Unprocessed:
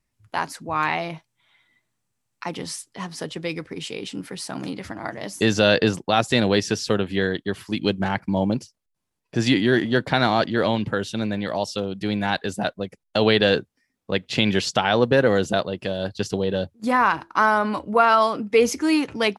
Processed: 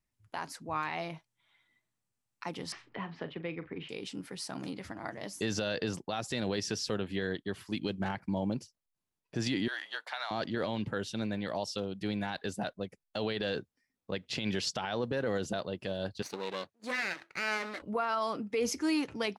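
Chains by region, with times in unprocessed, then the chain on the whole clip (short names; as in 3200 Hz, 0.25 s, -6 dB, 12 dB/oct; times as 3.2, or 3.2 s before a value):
2.72–3.89 LPF 2800 Hz 24 dB/oct + doubler 41 ms -12.5 dB + three-band squash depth 70%
9.68–10.31 HPF 780 Hz 24 dB/oct + frequency shift -30 Hz + compressor 10:1, threshold -23 dBFS
16.22–17.82 minimum comb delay 0.48 ms + weighting filter A
whole clip: dynamic EQ 5200 Hz, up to +4 dB, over -42 dBFS, Q 2.8; limiter -13.5 dBFS; gain -9 dB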